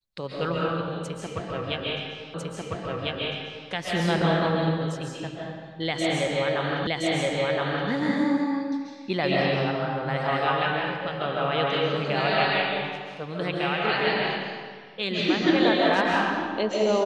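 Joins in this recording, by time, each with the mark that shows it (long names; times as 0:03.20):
0:02.34: the same again, the last 1.35 s
0:06.87: the same again, the last 1.02 s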